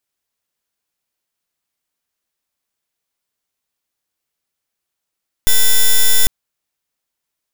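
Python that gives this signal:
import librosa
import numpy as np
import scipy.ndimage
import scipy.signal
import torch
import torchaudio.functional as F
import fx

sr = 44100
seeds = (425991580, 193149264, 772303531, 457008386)

y = fx.pulse(sr, length_s=0.8, hz=3510.0, level_db=-8.5, duty_pct=5)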